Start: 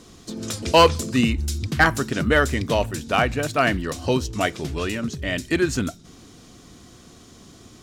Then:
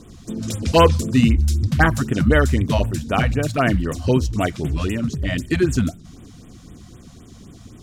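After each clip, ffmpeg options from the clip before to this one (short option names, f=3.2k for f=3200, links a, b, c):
-af "lowshelf=f=300:g=10,afftfilt=real='re*(1-between(b*sr/1024,330*pow(5400/330,0.5+0.5*sin(2*PI*3.9*pts/sr))/1.41,330*pow(5400/330,0.5+0.5*sin(2*PI*3.9*pts/sr))*1.41))':imag='im*(1-between(b*sr/1024,330*pow(5400/330,0.5+0.5*sin(2*PI*3.9*pts/sr))/1.41,330*pow(5400/330,0.5+0.5*sin(2*PI*3.9*pts/sr))*1.41))':win_size=1024:overlap=0.75,volume=-1dB"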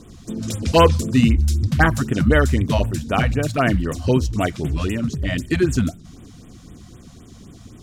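-af anull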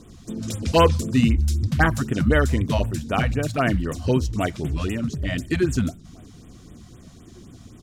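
-filter_complex "[0:a]asplit=2[a][b];[b]adelay=1749,volume=-29dB,highshelf=f=4k:g=-39.4[c];[a][c]amix=inputs=2:normalize=0,volume=-3dB"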